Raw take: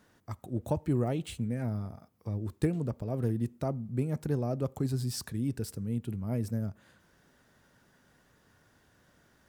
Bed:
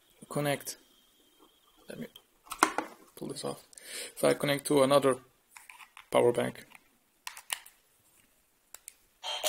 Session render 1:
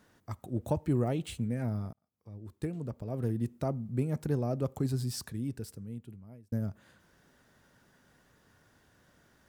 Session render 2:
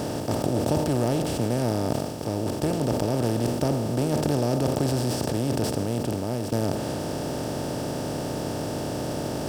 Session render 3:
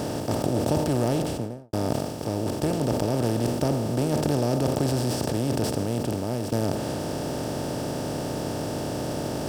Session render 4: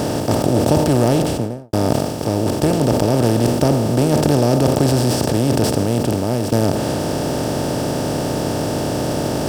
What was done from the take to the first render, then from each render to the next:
0:01.93–0:03.57: fade in; 0:04.90–0:06.52: fade out
compressor on every frequency bin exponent 0.2; level that may fall only so fast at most 42 dB per second
0:01.18–0:01.73: fade out and dull
level +9 dB; brickwall limiter −3 dBFS, peak gain reduction 2 dB

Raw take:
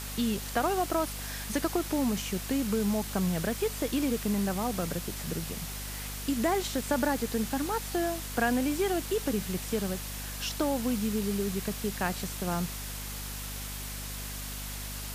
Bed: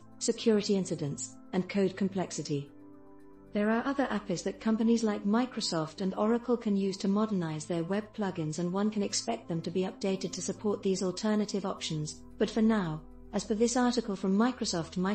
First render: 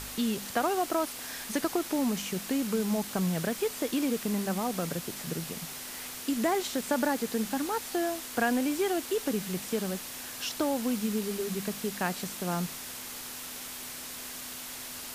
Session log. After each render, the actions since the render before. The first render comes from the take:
hum removal 50 Hz, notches 4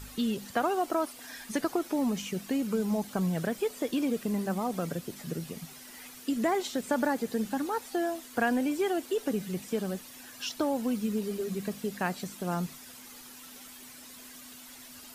broadband denoise 11 dB, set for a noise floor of −41 dBFS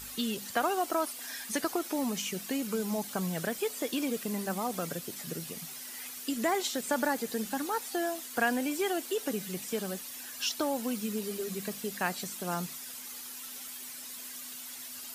spectral tilt +2 dB per octave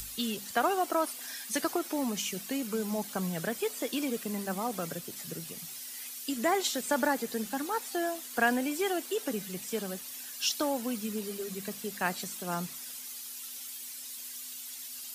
upward compression, threshold −37 dBFS
multiband upward and downward expander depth 40%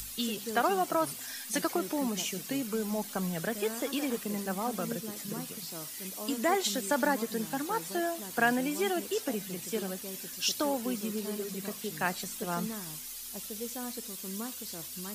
mix in bed −13 dB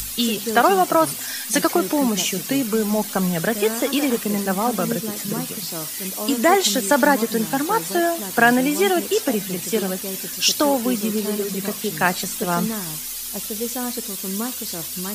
level +12 dB
brickwall limiter −1 dBFS, peak gain reduction 1 dB

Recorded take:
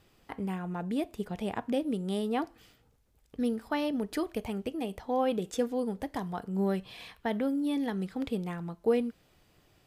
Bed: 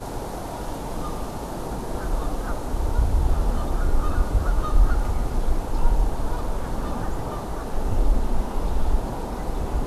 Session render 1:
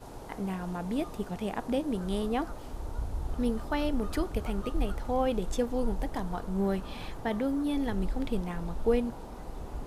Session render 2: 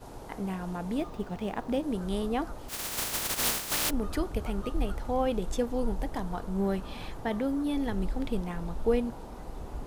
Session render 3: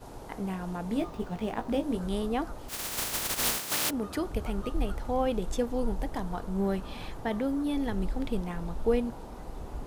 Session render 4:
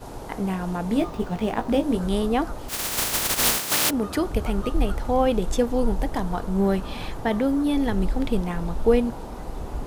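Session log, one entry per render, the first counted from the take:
mix in bed −13.5 dB
0:00.98–0:01.83: running median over 5 samples; 0:02.68–0:03.89: compressing power law on the bin magnitudes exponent 0.13
0:00.88–0:02.08: double-tracking delay 18 ms −6.5 dB; 0:03.57–0:04.25: high-pass filter 100 Hz
level +7.5 dB

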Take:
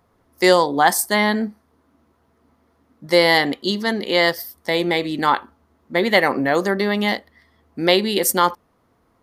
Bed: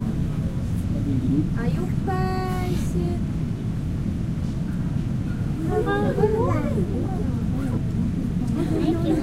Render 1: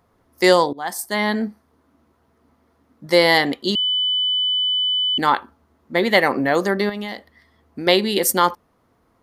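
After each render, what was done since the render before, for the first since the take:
0:00.73–0:01.46: fade in, from −21.5 dB
0:03.75–0:05.18: beep over 3,000 Hz −17 dBFS
0:06.89–0:07.87: downward compressor, threshold −25 dBFS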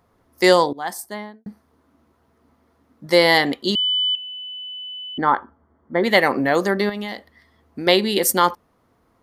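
0:00.80–0:01.46: fade out and dull
0:04.15–0:06.04: Savitzky-Golay smoothing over 41 samples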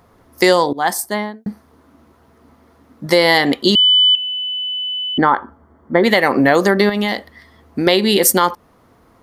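downward compressor 6 to 1, threshold −19 dBFS, peak gain reduction 10 dB
boost into a limiter +10.5 dB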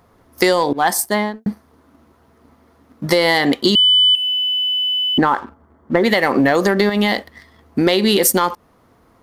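downward compressor, threshold −14 dBFS, peak gain reduction 6.5 dB
leveller curve on the samples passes 1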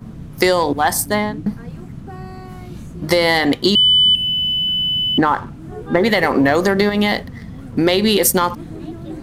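mix in bed −9 dB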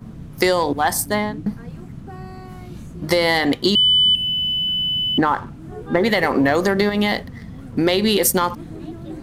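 level −2.5 dB

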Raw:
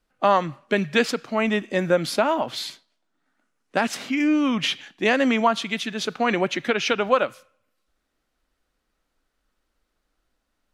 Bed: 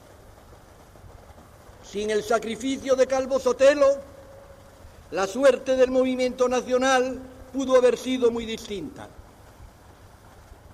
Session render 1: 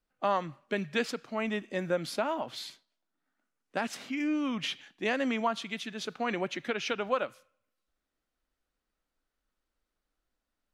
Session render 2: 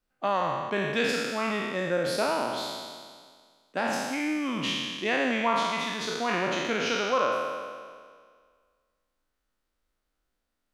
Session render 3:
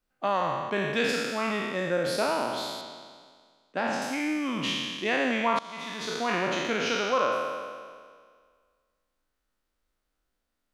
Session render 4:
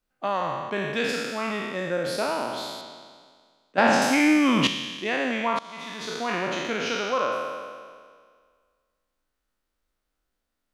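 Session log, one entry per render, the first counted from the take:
level −10 dB
peak hold with a decay on every bin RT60 1.83 s
0:02.81–0:04.02: high-frequency loss of the air 69 metres; 0:05.59–0:06.17: fade in, from −22 dB
0:03.78–0:04.67: clip gain +10 dB

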